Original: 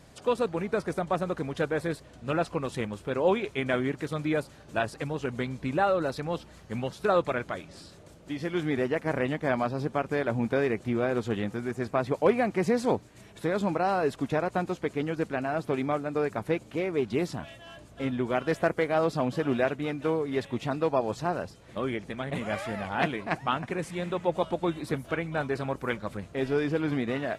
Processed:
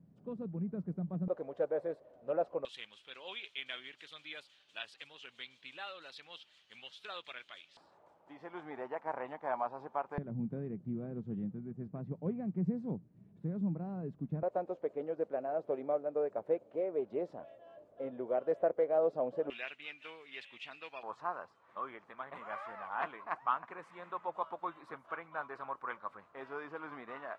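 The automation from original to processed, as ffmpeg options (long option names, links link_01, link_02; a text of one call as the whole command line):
ffmpeg -i in.wav -af "asetnsamples=nb_out_samples=441:pad=0,asendcmd='1.28 bandpass f 570;2.65 bandpass f 3200;7.77 bandpass f 890;10.18 bandpass f 170;14.43 bandpass f 550;19.5 bandpass f 2700;21.03 bandpass f 1100',bandpass=frequency=180:width_type=q:width=3.6:csg=0" out.wav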